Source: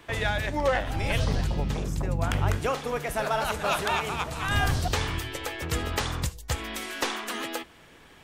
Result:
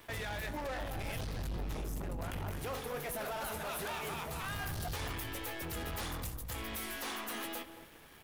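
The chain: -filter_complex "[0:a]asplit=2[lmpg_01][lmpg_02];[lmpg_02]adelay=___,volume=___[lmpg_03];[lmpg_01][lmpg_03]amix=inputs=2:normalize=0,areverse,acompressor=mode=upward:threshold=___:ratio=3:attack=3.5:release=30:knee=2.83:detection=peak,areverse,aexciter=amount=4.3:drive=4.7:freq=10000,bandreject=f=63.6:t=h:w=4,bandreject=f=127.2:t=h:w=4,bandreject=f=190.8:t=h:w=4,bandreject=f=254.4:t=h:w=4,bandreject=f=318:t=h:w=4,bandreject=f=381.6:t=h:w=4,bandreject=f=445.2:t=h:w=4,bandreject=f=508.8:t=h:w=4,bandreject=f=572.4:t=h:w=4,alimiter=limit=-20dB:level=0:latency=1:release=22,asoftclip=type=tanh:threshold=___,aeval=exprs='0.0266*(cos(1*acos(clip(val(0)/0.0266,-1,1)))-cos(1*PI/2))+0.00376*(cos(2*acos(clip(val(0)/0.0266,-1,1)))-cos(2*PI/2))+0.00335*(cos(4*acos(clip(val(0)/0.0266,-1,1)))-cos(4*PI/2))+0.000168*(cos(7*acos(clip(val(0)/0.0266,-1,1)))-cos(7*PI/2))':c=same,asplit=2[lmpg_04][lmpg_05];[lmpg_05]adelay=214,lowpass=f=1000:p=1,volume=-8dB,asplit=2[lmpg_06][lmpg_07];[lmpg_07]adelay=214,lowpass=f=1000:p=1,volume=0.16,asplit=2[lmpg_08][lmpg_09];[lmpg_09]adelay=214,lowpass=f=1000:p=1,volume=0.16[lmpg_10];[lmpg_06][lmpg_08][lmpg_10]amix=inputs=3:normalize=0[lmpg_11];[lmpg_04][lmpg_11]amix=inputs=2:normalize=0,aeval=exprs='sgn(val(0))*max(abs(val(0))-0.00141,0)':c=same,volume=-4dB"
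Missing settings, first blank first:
18, -11.5dB, -46dB, -31.5dB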